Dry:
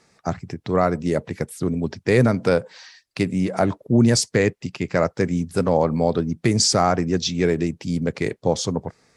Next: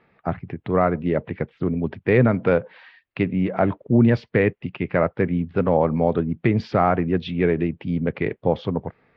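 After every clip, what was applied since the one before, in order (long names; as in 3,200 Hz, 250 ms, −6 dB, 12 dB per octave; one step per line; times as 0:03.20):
Butterworth low-pass 3,100 Hz 36 dB per octave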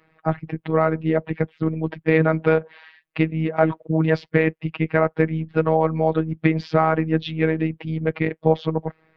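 harmonic and percussive parts rebalanced percussive +7 dB
phases set to zero 159 Hz
level −1.5 dB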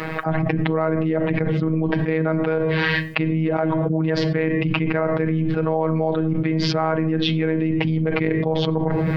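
rectangular room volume 830 cubic metres, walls furnished, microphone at 0.52 metres
envelope flattener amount 100%
level −8 dB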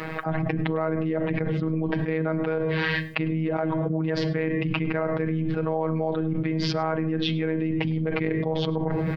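single-tap delay 103 ms −23.5 dB
level −5 dB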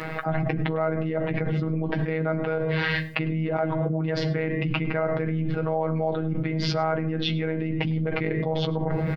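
double-tracking delay 14 ms −8 dB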